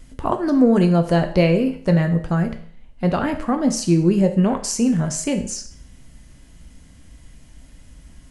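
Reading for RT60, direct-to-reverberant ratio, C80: 0.50 s, 5.5 dB, 15.0 dB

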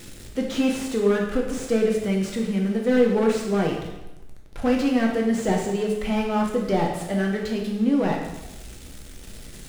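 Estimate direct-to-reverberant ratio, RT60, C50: 0.0 dB, 1.0 s, 4.0 dB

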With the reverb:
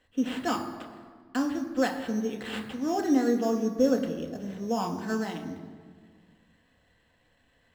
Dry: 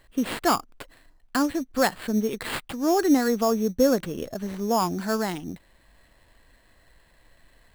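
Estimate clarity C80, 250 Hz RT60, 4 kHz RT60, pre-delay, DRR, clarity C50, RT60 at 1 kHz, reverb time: 10.0 dB, 2.2 s, 1.2 s, 3 ms, 2.5 dB, 9.0 dB, 1.7 s, 1.7 s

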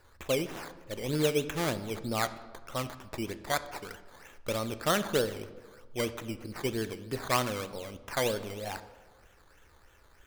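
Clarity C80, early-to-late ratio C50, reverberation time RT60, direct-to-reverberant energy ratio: 15.5 dB, 14.0 dB, 1.4 s, 11.0 dB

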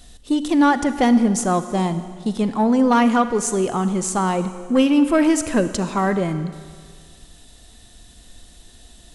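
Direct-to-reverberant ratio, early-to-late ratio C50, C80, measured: 11.0 dB, 11.5 dB, 12.5 dB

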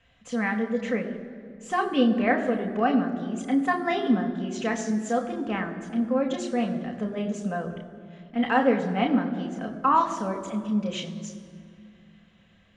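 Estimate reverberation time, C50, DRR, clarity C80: 2.2 s, 9.5 dB, 2.0 dB, 10.5 dB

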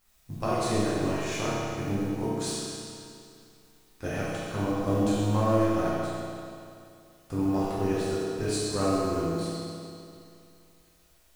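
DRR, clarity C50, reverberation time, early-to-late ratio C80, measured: -10.5 dB, -4.5 dB, 2.5 s, -2.0 dB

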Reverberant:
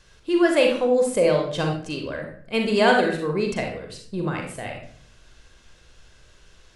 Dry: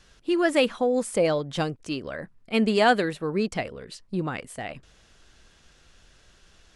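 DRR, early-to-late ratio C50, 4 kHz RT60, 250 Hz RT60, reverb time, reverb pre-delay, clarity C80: 2.0 dB, 4.5 dB, 0.40 s, 0.75 s, 0.55 s, 40 ms, 9.0 dB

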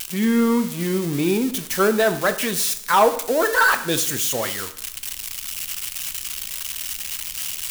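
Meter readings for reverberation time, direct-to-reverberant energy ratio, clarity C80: 0.70 s, 8.5 dB, 15.5 dB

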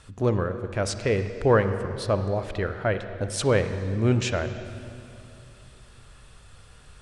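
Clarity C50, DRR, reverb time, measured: 9.5 dB, 9.0 dB, 2.6 s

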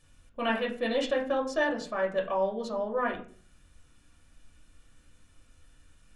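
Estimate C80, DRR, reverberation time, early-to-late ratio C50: 14.5 dB, -1.0 dB, 0.45 s, 10.0 dB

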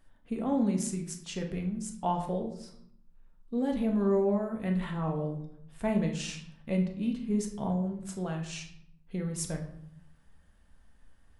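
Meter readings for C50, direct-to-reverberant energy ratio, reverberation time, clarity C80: 8.0 dB, 2.0 dB, 0.65 s, 11.5 dB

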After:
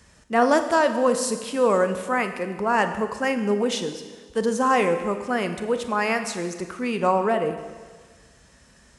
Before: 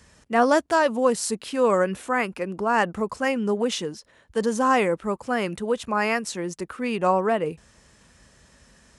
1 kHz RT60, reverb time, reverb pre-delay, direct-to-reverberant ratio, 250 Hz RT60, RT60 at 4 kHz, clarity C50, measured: 1.5 s, 1.5 s, 29 ms, 8.0 dB, 1.5 s, 1.5 s, 9.5 dB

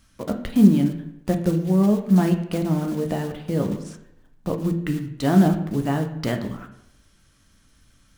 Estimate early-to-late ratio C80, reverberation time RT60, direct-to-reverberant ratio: 12.5 dB, 0.85 s, 4.0 dB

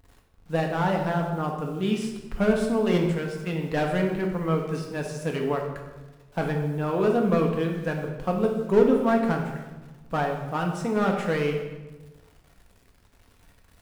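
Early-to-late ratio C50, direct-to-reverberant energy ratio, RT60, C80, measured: 5.0 dB, 1.0 dB, 1.2 s, 7.0 dB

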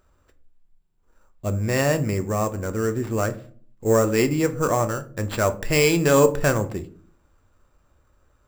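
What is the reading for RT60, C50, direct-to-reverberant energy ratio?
0.45 s, 16.0 dB, 9.0 dB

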